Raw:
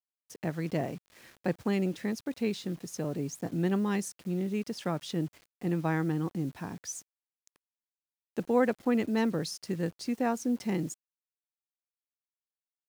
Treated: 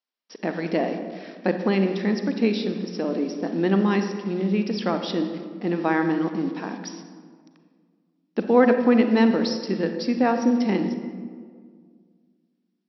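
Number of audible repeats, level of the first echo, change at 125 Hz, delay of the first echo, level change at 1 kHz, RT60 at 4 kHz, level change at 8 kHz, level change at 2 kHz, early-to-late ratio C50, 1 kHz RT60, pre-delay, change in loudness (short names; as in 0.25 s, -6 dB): none, none, +3.0 dB, none, +9.5 dB, 1.0 s, n/a, +9.5 dB, 7.5 dB, 1.7 s, 33 ms, +9.0 dB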